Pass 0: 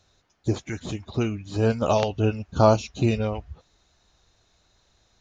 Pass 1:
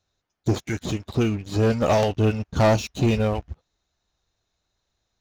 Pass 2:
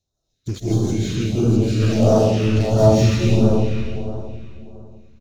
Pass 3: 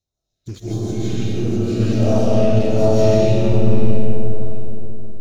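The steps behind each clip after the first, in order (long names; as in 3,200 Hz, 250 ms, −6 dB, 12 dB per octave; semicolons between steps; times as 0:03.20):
leveller curve on the samples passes 3; level −6.5 dB
repeating echo 242 ms, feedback 57%, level −18 dB; comb and all-pass reverb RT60 2.9 s, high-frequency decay 0.75×, pre-delay 115 ms, DRR −9 dB; all-pass phaser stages 2, 1.5 Hz, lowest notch 720–2,100 Hz; level −3 dB
comb and all-pass reverb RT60 2.2 s, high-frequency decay 0.4×, pre-delay 95 ms, DRR 2 dB; level −5 dB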